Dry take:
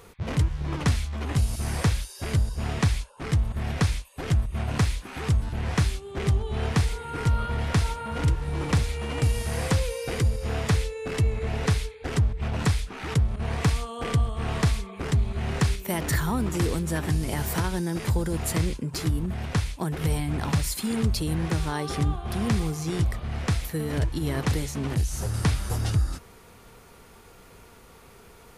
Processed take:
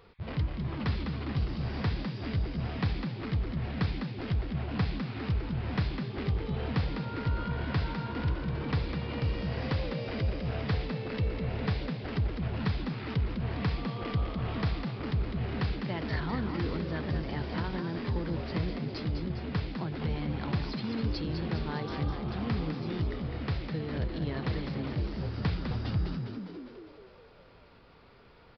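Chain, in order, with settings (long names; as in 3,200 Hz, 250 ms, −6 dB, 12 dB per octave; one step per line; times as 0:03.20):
echo with shifted repeats 203 ms, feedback 59%, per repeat +65 Hz, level −6.5 dB
downsampling to 11,025 Hz
level −7.5 dB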